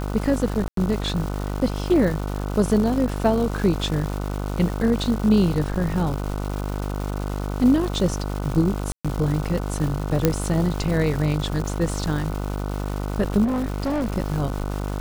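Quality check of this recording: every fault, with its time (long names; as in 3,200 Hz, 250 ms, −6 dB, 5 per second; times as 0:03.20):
mains buzz 50 Hz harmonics 30 −27 dBFS
surface crackle 480 per second −29 dBFS
0:00.68–0:00.77: drop-out 93 ms
0:08.92–0:09.05: drop-out 126 ms
0:10.25: click −3 dBFS
0:13.44–0:14.14: clipping −20.5 dBFS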